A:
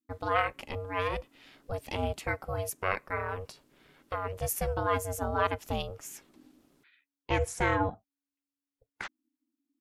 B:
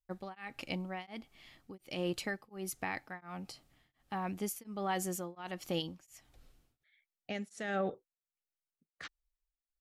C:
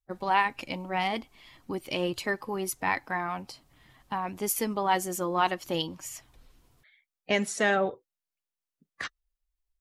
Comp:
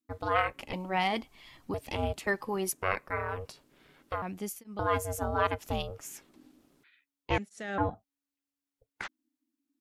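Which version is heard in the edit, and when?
A
0.73–1.74 from C
2.27–2.72 from C
4.22–4.79 from B
7.38–7.78 from B

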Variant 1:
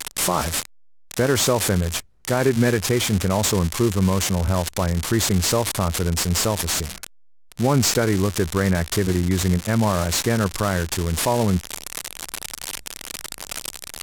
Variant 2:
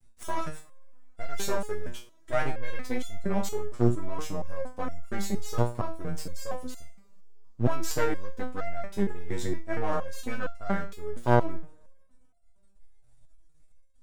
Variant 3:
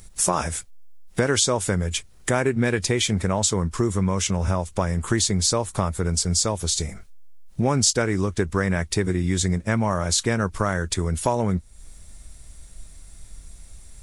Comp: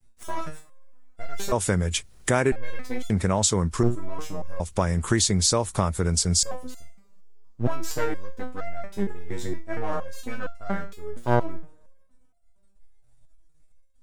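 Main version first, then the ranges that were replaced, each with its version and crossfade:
2
1.52–2.52 from 3
3.1–3.83 from 3
4.6–6.43 from 3
not used: 1

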